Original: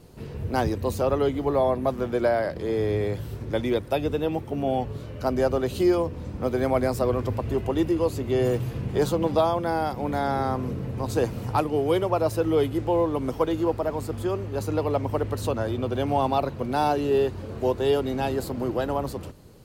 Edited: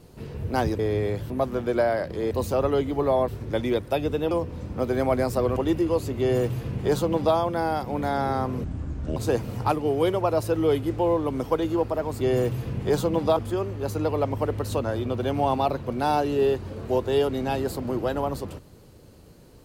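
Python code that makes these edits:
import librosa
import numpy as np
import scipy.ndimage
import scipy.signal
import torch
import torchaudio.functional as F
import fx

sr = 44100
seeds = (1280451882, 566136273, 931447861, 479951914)

y = fx.edit(x, sr, fx.swap(start_s=0.79, length_s=0.97, other_s=2.77, other_length_s=0.51),
    fx.cut(start_s=4.31, length_s=1.64),
    fx.cut(start_s=7.2, length_s=0.46),
    fx.duplicate(start_s=8.29, length_s=1.16, to_s=14.09),
    fx.speed_span(start_s=10.74, length_s=0.31, speed=0.59), tone=tone)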